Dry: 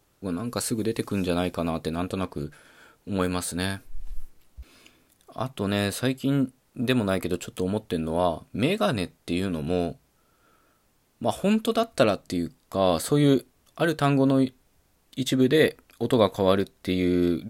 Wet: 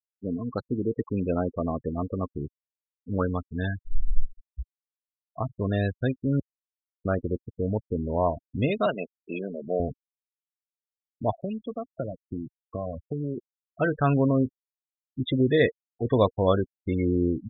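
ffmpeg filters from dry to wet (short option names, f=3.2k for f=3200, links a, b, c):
-filter_complex "[0:a]asettb=1/sr,asplit=3[a][b][c];[a]atrim=end=8.864[d];[b]atrim=start=8.86:end=9.8,asetpts=PTS-STARTPTS,afade=t=in:d=0.004:c=qsin,afade=t=out:st=0.936:d=0.004:c=qsin,highpass=f=200:w=0.5412,highpass=f=200:w=1.3066,equalizer=f=270:t=q:w=4:g=-8,equalizer=f=630:t=q:w=4:g=5,equalizer=f=2.9k:t=q:w=4:g=5,lowpass=f=3.9k:w=0.5412,lowpass=f=3.9k:w=1.3066[e];[c]atrim=start=9.796[f];[d][e]acrossfade=d=0.004:c1=hsin:c2=qsin[g];[g][f]acrossfade=d=0.004:c1=qsin:c2=hsin,asettb=1/sr,asplit=3[h][i][j];[h]atrim=end=11.344[k];[i]atrim=start=11.34:end=13.38,asetpts=PTS-STARTPTS,afade=t=in:d=0.004:c=qsin,afade=t=out:st=2.036:d=0.004:c=qsin,acrossover=split=190|2600[l][m][n];[l]acompressor=threshold=-37dB:ratio=4[o];[m]acompressor=threshold=-31dB:ratio=4[p];[n]acompressor=threshold=-40dB:ratio=4[q];[o][p][q]amix=inputs=3:normalize=0[r];[j]atrim=start=13.376[s];[k][r]acrossfade=d=0.004:c1=hsin:c2=qsin[t];[t][s]acrossfade=d=0.004:c1=qsin:c2=hsin,asplit=3[u][v][w];[u]atrim=end=6.4,asetpts=PTS-STARTPTS,afade=t=out:st=6.396:d=0.004:c=hsin[x];[v]atrim=start=6.4:end=7.05,asetpts=PTS-STARTPTS,volume=0[y];[w]atrim=start=7.05,asetpts=PTS-STARTPTS,afade=t=in:d=0.004:c=hsin[z];[x][y][z]concat=n=3:v=0:a=1,lowpass=3.8k,afftfilt=real='re*gte(hypot(re,im),0.0708)':imag='im*gte(hypot(re,im),0.0708)':win_size=1024:overlap=0.75,asubboost=boost=3.5:cutoff=100"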